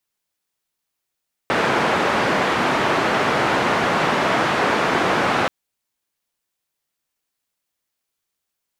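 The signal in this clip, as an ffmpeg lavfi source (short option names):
-f lavfi -i "anoisesrc=c=white:d=3.98:r=44100:seed=1,highpass=f=150,lowpass=f=1400,volume=-2.2dB"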